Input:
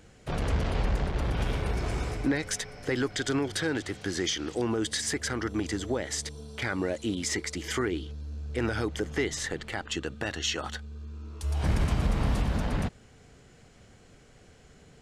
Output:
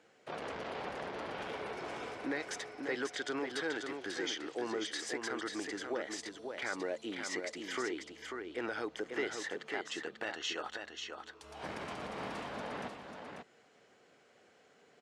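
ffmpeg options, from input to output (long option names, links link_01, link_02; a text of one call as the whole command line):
ffmpeg -i in.wav -af "highpass=400,aemphasis=mode=reproduction:type=50fm,aecho=1:1:541:0.531,volume=-5dB" out.wav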